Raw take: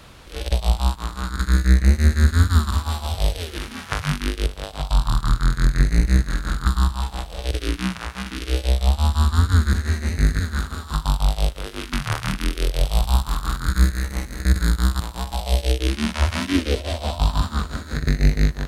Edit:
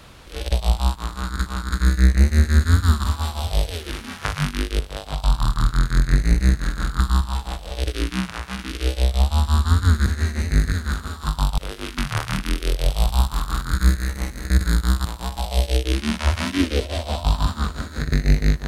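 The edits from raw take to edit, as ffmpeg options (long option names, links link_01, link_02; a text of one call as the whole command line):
ffmpeg -i in.wav -filter_complex "[0:a]asplit=3[link_01][link_02][link_03];[link_01]atrim=end=1.462[link_04];[link_02]atrim=start=1.128:end=11.252[link_05];[link_03]atrim=start=11.528[link_06];[link_04][link_05]acrossfade=duration=0.004:curve1=hsin:curve2=hsin[link_07];[link_07][link_06]acrossfade=duration=0.004:curve1=hsin:curve2=hsin" out.wav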